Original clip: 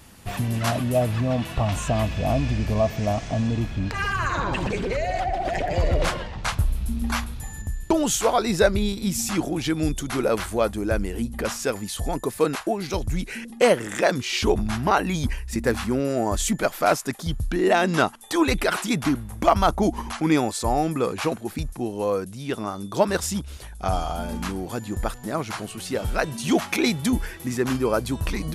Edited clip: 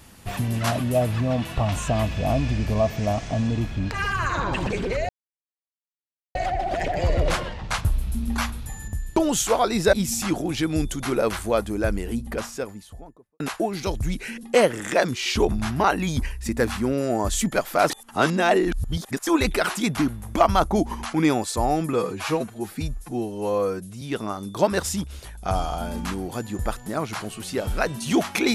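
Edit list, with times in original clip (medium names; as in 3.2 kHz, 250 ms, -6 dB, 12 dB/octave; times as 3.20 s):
5.09 s: insert silence 1.26 s
8.67–9.00 s: delete
11.08–12.47 s: studio fade out
16.97–18.34 s: reverse
21.00–22.39 s: stretch 1.5×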